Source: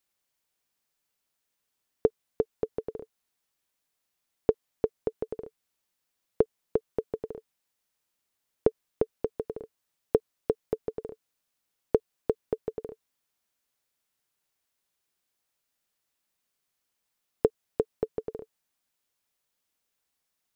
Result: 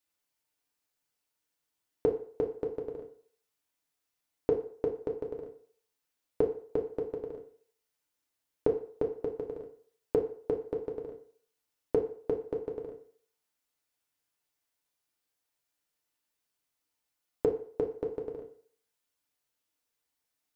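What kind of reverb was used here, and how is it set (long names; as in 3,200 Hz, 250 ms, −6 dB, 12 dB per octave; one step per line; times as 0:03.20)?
feedback delay network reverb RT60 0.52 s, low-frequency decay 0.75×, high-frequency decay 0.8×, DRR 0.5 dB
level −5.5 dB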